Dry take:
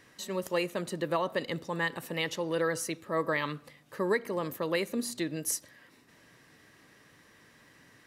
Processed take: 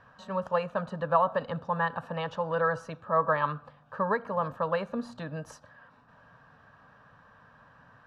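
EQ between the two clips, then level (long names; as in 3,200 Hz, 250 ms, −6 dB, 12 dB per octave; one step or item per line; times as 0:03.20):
low-pass with resonance 1,700 Hz, resonance Q 2.6
phaser with its sweep stopped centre 840 Hz, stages 4
+6.0 dB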